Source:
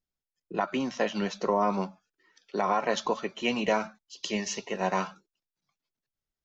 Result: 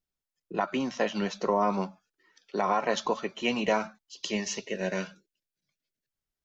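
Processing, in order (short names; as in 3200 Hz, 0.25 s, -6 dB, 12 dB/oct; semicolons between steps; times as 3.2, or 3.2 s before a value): spectral gain 4.6–6.1, 650–1400 Hz -15 dB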